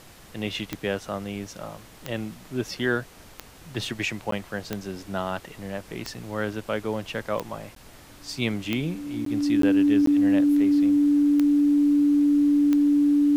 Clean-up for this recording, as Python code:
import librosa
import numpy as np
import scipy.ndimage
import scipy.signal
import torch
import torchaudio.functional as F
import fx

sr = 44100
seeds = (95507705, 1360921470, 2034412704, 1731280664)

y = fx.fix_declick_ar(x, sr, threshold=10.0)
y = fx.notch(y, sr, hz=290.0, q=30.0)
y = fx.fix_interpolate(y, sr, at_s=(4.31, 7.75, 9.25, 9.62, 10.06), length_ms=13.0)
y = fx.noise_reduce(y, sr, print_start_s=3.09, print_end_s=3.59, reduce_db=21.0)